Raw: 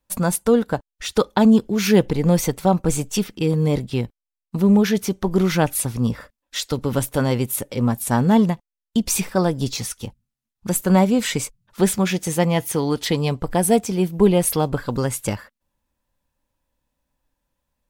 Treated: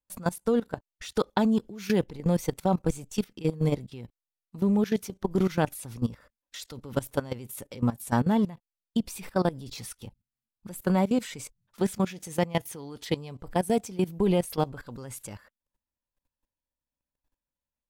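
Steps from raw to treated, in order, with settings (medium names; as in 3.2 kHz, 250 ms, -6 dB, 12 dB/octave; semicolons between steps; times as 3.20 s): 8.19–11.07 s: peaking EQ 6.4 kHz -5.5 dB 0.49 oct; level held to a coarse grid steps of 18 dB; trim -4 dB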